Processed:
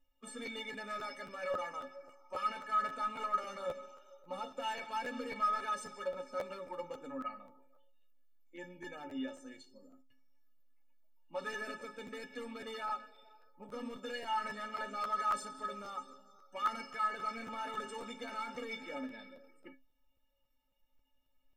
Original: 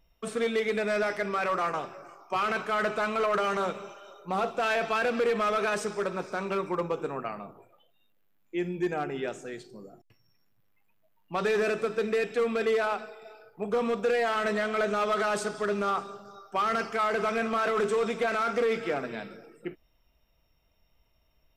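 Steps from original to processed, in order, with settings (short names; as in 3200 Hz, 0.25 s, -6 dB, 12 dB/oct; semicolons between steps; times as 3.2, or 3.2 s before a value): bin magnitudes rounded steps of 15 dB; metallic resonator 260 Hz, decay 0.28 s, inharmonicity 0.03; crackling interface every 0.27 s, samples 512, repeat, from 0.45; gain +4.5 dB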